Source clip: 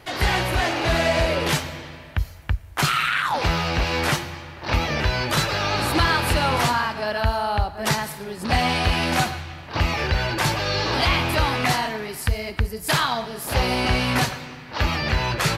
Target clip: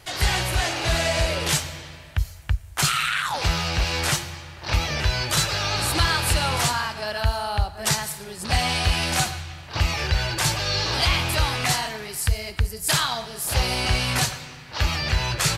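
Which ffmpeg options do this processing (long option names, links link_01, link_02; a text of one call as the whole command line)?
ffmpeg -i in.wav -af "equalizer=frequency=250:width_type=o:width=1:gain=-9,equalizer=frequency=500:width_type=o:width=1:gain=-4,equalizer=frequency=1000:width_type=o:width=1:gain=-4,equalizer=frequency=2000:width_type=o:width=1:gain=-3,equalizer=frequency=8000:width_type=o:width=1:gain=7,volume=1dB" out.wav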